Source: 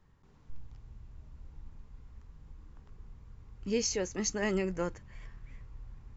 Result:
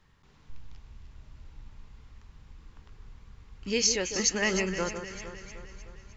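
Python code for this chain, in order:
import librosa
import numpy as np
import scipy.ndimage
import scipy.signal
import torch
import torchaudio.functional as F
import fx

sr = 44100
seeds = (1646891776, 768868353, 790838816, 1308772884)

y = fx.peak_eq(x, sr, hz=3400.0, db=11.0, octaves=2.7)
y = fx.echo_alternate(y, sr, ms=153, hz=1500.0, feedback_pct=73, wet_db=-8.0)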